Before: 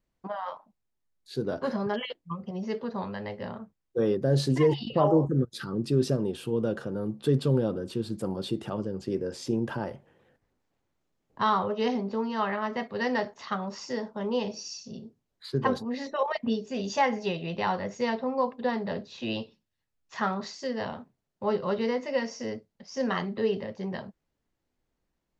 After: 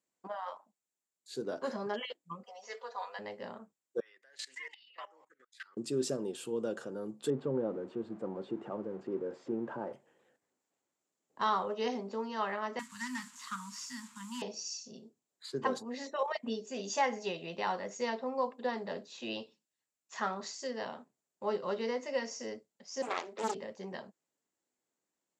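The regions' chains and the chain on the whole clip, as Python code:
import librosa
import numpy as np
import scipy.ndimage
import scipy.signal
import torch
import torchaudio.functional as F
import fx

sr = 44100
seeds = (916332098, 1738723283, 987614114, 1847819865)

y = fx.chain(x, sr, fx.highpass(hz=610.0, slope=24),
    fx.comb(ms=4.1, depth=0.94), at=(2.43, 3.19))
y = fx.chain(y, sr, fx.highpass_res(hz=2000.0, q=4.6),
    fx.high_shelf(hz=4500.0, db=-11.0),
    fx.level_steps(step_db=19), at=(4.0, 5.77))
y = fx.chain(y, sr, fx.zero_step(step_db=-40.0),
    fx.lowpass(hz=1200.0, slope=12), at=(7.3, 9.93))
y = fx.chain(y, sr, fx.delta_mod(bps=64000, step_db=-44.5),
    fx.cheby1_bandstop(low_hz=260.0, high_hz=940.0, order=5), at=(12.79, 14.42))
y = fx.chain(y, sr, fx.highpass(hz=310.0, slope=24),
    fx.doppler_dist(depth_ms=0.78), at=(23.02, 23.55))
y = scipy.signal.sosfilt(scipy.signal.butter(2, 270.0, 'highpass', fs=sr, output='sos'), y)
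y = fx.peak_eq(y, sr, hz=7400.0, db=14.0, octaves=0.46)
y = F.gain(torch.from_numpy(y), -5.5).numpy()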